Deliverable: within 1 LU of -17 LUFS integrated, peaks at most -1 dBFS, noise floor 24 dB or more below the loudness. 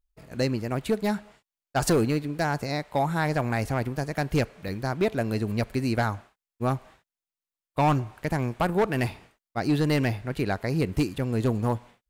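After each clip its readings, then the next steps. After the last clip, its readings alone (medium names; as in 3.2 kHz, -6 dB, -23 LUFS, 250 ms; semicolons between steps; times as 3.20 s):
clipped samples 1.2%; clipping level -17.0 dBFS; dropouts 1; longest dropout 3.3 ms; loudness -27.5 LUFS; peak level -17.0 dBFS; loudness target -17.0 LUFS
-> clip repair -17 dBFS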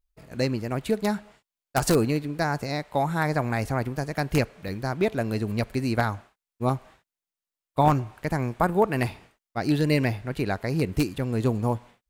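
clipped samples 0.0%; dropouts 1; longest dropout 3.3 ms
-> interpolate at 4.68 s, 3.3 ms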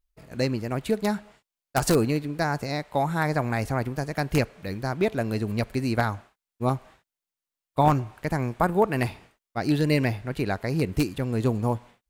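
dropouts 0; loudness -26.5 LUFS; peak level -8.0 dBFS; loudness target -17.0 LUFS
-> trim +9.5 dB; peak limiter -1 dBFS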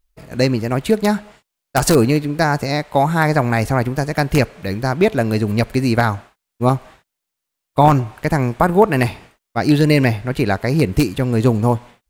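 loudness -17.5 LUFS; peak level -1.0 dBFS; noise floor -81 dBFS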